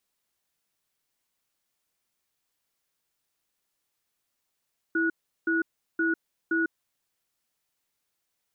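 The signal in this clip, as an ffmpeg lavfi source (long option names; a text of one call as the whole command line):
ffmpeg -f lavfi -i "aevalsrc='0.0562*(sin(2*PI*329*t)+sin(2*PI*1460*t))*clip(min(mod(t,0.52),0.15-mod(t,0.52))/0.005,0,1)':duration=1.91:sample_rate=44100" out.wav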